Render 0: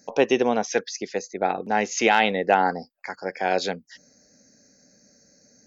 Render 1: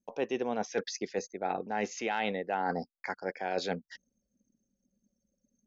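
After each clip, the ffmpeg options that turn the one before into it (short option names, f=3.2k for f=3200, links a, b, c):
-af "anlmdn=0.0251,highshelf=f=5k:g=-8,areverse,acompressor=threshold=-29dB:ratio=6,areverse"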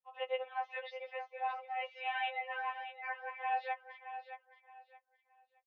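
-af "aecho=1:1:621|1242|1863:0.299|0.0776|0.0202,highpass=f=490:t=q:w=0.5412,highpass=f=490:t=q:w=1.307,lowpass=f=3k:t=q:w=0.5176,lowpass=f=3k:t=q:w=0.7071,lowpass=f=3k:t=q:w=1.932,afreqshift=130,afftfilt=real='re*3.46*eq(mod(b,12),0)':imag='im*3.46*eq(mod(b,12),0)':win_size=2048:overlap=0.75"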